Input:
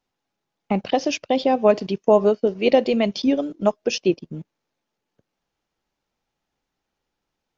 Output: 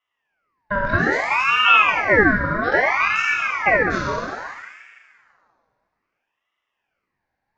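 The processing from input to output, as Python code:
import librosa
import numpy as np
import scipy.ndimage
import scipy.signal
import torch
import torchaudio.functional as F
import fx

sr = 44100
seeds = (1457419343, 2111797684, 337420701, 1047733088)

y = fx.spec_trails(x, sr, decay_s=0.99)
y = scipy.signal.sosfilt(scipy.signal.butter(4, 3900.0, 'lowpass', fs=sr, output='sos'), y)
y = fx.peak_eq(y, sr, hz=630.0, db=5.5, octaves=2.4)
y = fx.fixed_phaser(y, sr, hz=1000.0, stages=4)
y = fx.rev_schroeder(y, sr, rt60_s=1.8, comb_ms=33, drr_db=0.0)
y = fx.ring_lfo(y, sr, carrier_hz=1400.0, swing_pct=45, hz=0.61)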